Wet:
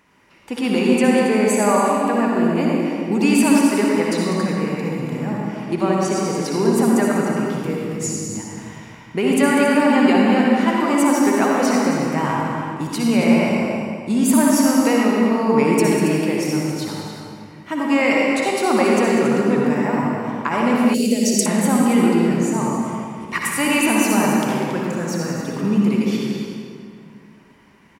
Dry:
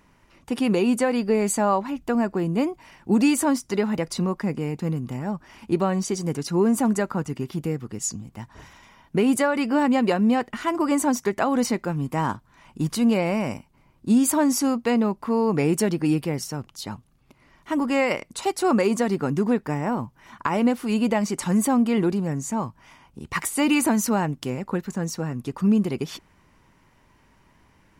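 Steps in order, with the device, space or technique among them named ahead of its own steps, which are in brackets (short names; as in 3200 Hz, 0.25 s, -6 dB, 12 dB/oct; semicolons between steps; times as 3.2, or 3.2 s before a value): stadium PA (HPF 170 Hz 6 dB/oct; bell 2200 Hz +4.5 dB 1.1 oct; loudspeakers at several distances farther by 67 m -11 dB, 95 m -11 dB; reverb RT60 2.3 s, pre-delay 54 ms, DRR -2.5 dB); 20.94–21.46 EQ curve 520 Hz 0 dB, 1000 Hz -30 dB, 5300 Hz +12 dB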